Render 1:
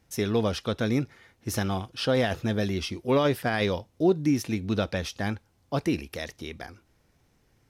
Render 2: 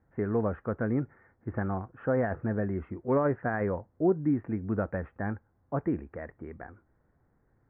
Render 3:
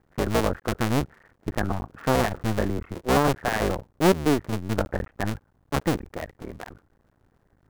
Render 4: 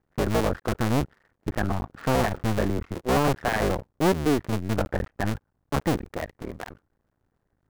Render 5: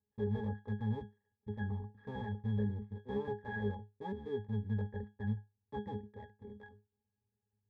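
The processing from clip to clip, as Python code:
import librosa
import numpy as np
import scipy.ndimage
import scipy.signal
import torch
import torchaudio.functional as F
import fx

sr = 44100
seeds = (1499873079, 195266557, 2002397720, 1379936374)

y1 = scipy.signal.sosfilt(scipy.signal.butter(8, 1800.0, 'lowpass', fs=sr, output='sos'), x)
y1 = y1 * librosa.db_to_amplitude(-3.0)
y2 = fx.cycle_switch(y1, sr, every=2, mode='muted')
y2 = y2 * librosa.db_to_amplitude(8.0)
y3 = fx.leveller(y2, sr, passes=2)
y3 = y3 * librosa.db_to_amplitude(-5.5)
y4 = fx.octave_resonator(y3, sr, note='G#', decay_s=0.22)
y4 = y4 * librosa.db_to_amplitude(-3.0)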